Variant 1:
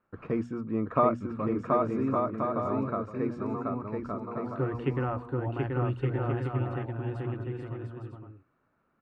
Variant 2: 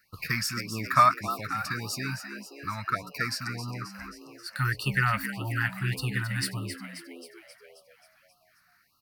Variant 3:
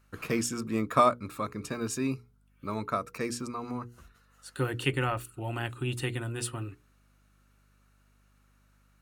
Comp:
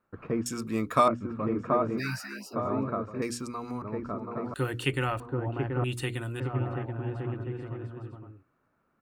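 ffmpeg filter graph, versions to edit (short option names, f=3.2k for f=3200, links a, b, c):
-filter_complex "[2:a]asplit=4[a][b][c][d];[0:a]asplit=6[e][f][g][h][i][j];[e]atrim=end=0.462[k];[a]atrim=start=0.458:end=1.082[l];[f]atrim=start=1.078:end=2.01[m];[1:a]atrim=start=1.97:end=2.56[n];[g]atrim=start=2.52:end=3.222[o];[b]atrim=start=3.218:end=3.822[p];[h]atrim=start=3.818:end=4.542[q];[c]atrim=start=4.538:end=5.202[r];[i]atrim=start=5.198:end=5.842[s];[d]atrim=start=5.838:end=6.402[t];[j]atrim=start=6.398[u];[k][l]acrossfade=d=0.004:c1=hsin:c2=hsin[v];[v][m]acrossfade=d=0.004:c1=hsin:c2=hsin[w];[w][n]acrossfade=d=0.04:c1=tri:c2=tri[x];[x][o]acrossfade=d=0.04:c1=tri:c2=tri[y];[y][p]acrossfade=d=0.004:c1=hsin:c2=hsin[z];[z][q]acrossfade=d=0.004:c1=hsin:c2=hsin[aa];[aa][r]acrossfade=d=0.004:c1=hsin:c2=hsin[ab];[ab][s]acrossfade=d=0.004:c1=hsin:c2=hsin[ac];[ac][t]acrossfade=d=0.004:c1=hsin:c2=hsin[ad];[ad][u]acrossfade=d=0.004:c1=hsin:c2=hsin"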